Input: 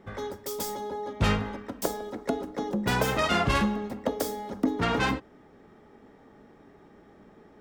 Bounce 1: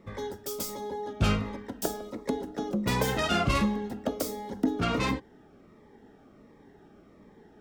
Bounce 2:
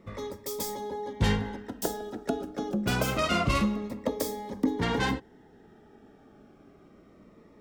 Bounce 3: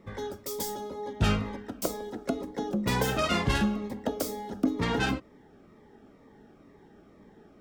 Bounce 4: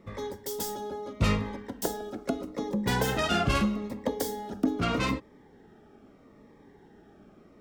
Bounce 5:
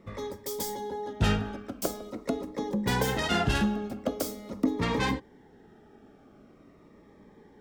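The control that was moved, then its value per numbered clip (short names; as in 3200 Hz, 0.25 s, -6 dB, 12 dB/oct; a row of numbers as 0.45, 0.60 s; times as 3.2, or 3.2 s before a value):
cascading phaser, rate: 1.4, 0.27, 2.1, 0.79, 0.44 Hz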